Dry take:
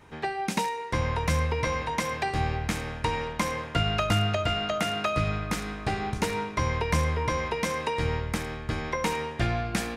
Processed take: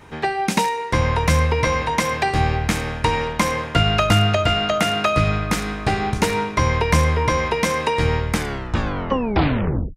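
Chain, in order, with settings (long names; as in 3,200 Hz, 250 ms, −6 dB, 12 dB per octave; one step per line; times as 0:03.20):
turntable brake at the end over 1.62 s
level +8.5 dB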